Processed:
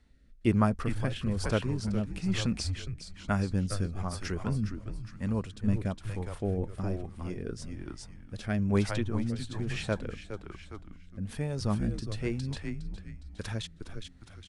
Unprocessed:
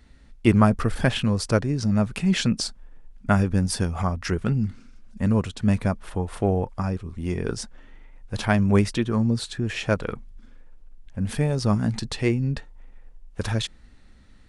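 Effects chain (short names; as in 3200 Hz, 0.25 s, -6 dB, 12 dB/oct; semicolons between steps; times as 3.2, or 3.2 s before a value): frequency-shifting echo 0.411 s, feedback 37%, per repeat -100 Hz, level -5.5 dB; rotary speaker horn 1.1 Hz; gain -7.5 dB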